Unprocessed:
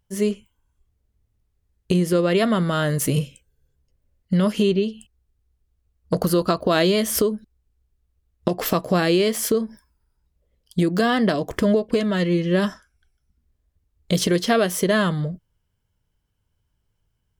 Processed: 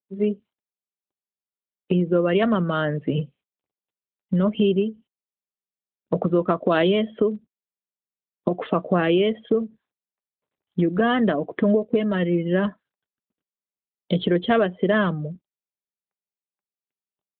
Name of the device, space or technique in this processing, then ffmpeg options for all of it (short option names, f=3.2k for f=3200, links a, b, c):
mobile call with aggressive noise cancelling: -af "highpass=f=160:w=0.5412,highpass=f=160:w=1.3066,afftdn=nr=23:nf=-31" -ar 8000 -c:a libopencore_amrnb -b:a 12200